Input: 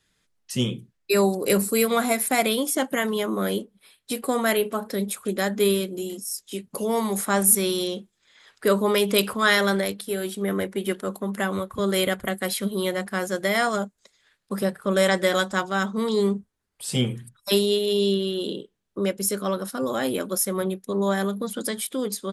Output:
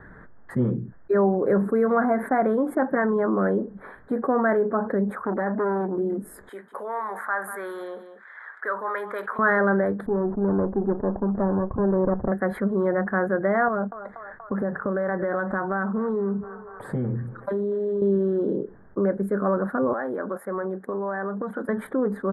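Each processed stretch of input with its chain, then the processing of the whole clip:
0:05.10–0:05.98: parametric band 95 Hz −8 dB 1.3 octaves + downward compressor 2 to 1, threshold −24 dBFS + saturating transformer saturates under 1,200 Hz
0:06.49–0:09.39: Bessel high-pass filter 1,900 Hz + single-tap delay 191 ms −20 dB
0:10.06–0:12.32: lower of the sound and its delayed copy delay 0.37 ms + low-pass filter 1,200 Hz 24 dB per octave
0:13.68–0:18.02: downward compressor, threshold −28 dBFS + feedback echo with a band-pass in the loop 239 ms, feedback 63%, band-pass 1,100 Hz, level −20.5 dB
0:19.93–0:21.69: high-pass filter 600 Hz 6 dB per octave + downward compressor, threshold −34 dBFS
whole clip: elliptic low-pass filter 1,700 Hz, stop band 40 dB; envelope flattener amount 50%

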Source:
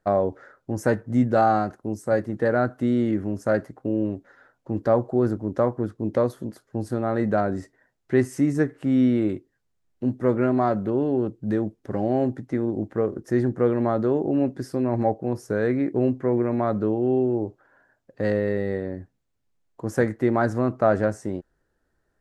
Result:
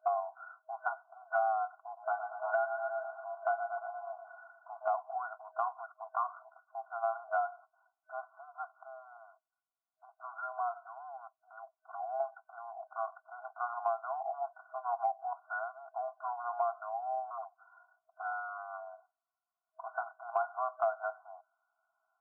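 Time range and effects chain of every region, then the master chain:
0:01.77–0:04.95: frequency shifter +59 Hz + repeating echo 117 ms, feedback 56%, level −9.5 dB
0:05.95–0:06.42: downward compressor 1.5 to 1, threshold −25 dBFS + low-pass with resonance 1,200 Hz, resonance Q 2.9
0:09.17–0:12.20: high-pass filter 1,400 Hz 6 dB per octave + downward compressor 2.5 to 1, threshold −32 dBFS + one half of a high-frequency compander decoder only
0:17.30–0:19.86: Butterworth high-pass 250 Hz 96 dB per octave + notch filter 830 Hz, Q 11 + hard clipping −23 dBFS
whole clip: brick-wall band-pass 640–1,500 Hz; comb filter 2.8 ms, depth 64%; downward compressor 6 to 1, threshold −29 dBFS

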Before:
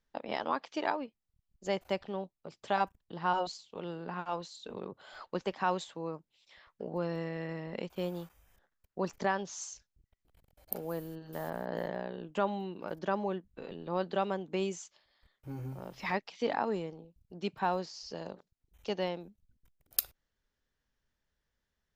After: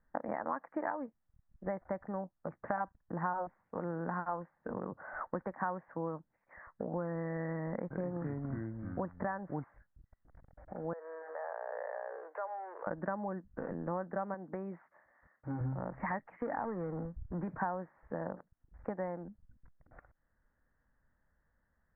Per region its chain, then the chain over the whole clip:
0:07.71–0:09.64: delay with pitch and tempo change per echo 194 ms, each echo −4 semitones, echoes 3, each echo −6 dB + bad sample-rate conversion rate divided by 8×, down filtered, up hold
0:10.93–0:12.87: mu-law and A-law mismatch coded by mu + Chebyshev high-pass filter 440 Hz, order 5 + downward compressor 2.5 to 1, threshold −49 dBFS
0:14.34–0:15.61: high-pass filter 210 Hz 6 dB per octave + downward compressor 2 to 1, threshold −37 dBFS
0:16.19–0:17.57: power curve on the samples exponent 0.7 + downward compressor 2.5 to 1, threshold −36 dBFS + multiband upward and downward expander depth 70%
whole clip: downward compressor 6 to 1, threshold −40 dBFS; Butterworth low-pass 1,900 Hz 72 dB per octave; parametric band 400 Hz −10.5 dB 0.26 octaves; level +8 dB

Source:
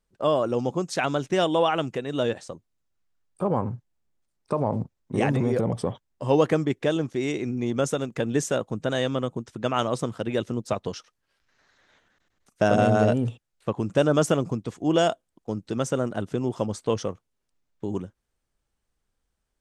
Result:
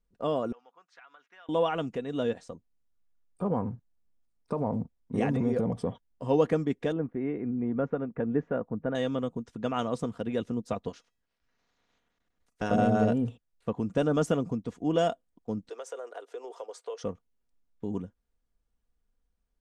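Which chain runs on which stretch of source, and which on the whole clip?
0:00.52–0:01.49: four-pole ladder band-pass 1,700 Hz, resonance 35% + downward compressor 5 to 1, threshold −42 dBFS
0:06.92–0:08.95: low-pass filter 1,900 Hz 24 dB per octave + one half of a high-frequency compander decoder only
0:10.88–0:12.70: ceiling on every frequency bin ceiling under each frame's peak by 15 dB + tuned comb filter 650 Hz, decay 0.48 s, mix 50%
0:15.69–0:17.04: Butterworth high-pass 400 Hz 48 dB per octave + downward compressor 4 to 1, threshold −30 dBFS
whole clip: spectral tilt −1.5 dB per octave; comb filter 4.2 ms, depth 41%; level −7 dB

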